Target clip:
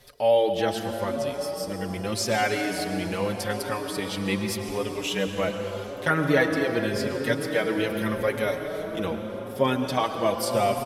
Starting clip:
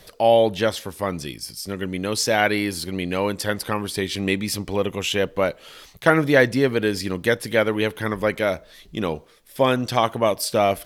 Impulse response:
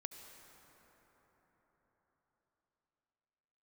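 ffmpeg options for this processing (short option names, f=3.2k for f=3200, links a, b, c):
-filter_complex "[0:a]asettb=1/sr,asplit=3[a][b][c];[a]atrim=end=7.894[d];[b]atrim=start=7.89:end=9.05,asetpts=PTS-STARTPTS,afade=t=in:d=0.004:c=qsin,afade=t=out:st=1.156:d=0.004:c=qsin,highshelf=f=7.6k:g=7.5[e];[c]atrim=start=9.046[f];[d][e]acrossfade=d=0.004:c1=hsin:c2=qsin[g];[g][f]acrossfade=d=0.004:c1=qsin:c2=hsin[h];[1:a]atrim=start_sample=2205,asetrate=29547,aresample=44100[i];[h][i]afir=irnorm=-1:irlink=0,asplit=2[j][k];[k]adelay=5.2,afreqshift=0.84[l];[j][l]amix=inputs=2:normalize=1"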